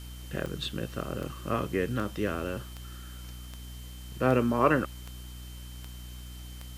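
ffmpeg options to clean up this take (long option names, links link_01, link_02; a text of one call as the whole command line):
ffmpeg -i in.wav -af "adeclick=threshold=4,bandreject=frequency=61.1:width_type=h:width=4,bandreject=frequency=122.2:width_type=h:width=4,bandreject=frequency=183.3:width_type=h:width=4,bandreject=frequency=244.4:width_type=h:width=4,bandreject=frequency=305.5:width_type=h:width=4,bandreject=frequency=3100:width=30,afwtdn=0.0025" out.wav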